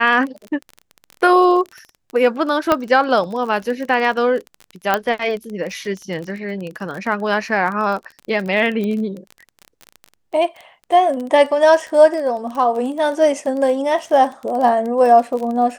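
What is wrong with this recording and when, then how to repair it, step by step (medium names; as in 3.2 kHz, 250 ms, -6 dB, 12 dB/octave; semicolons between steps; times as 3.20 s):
crackle 25 per s -25 dBFS
2.72 s: pop -3 dBFS
4.94 s: pop -3 dBFS
8.84 s: pop -14 dBFS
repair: de-click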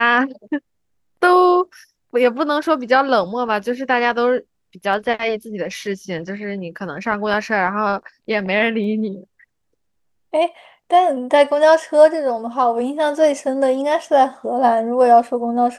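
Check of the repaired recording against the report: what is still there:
4.94 s: pop
8.84 s: pop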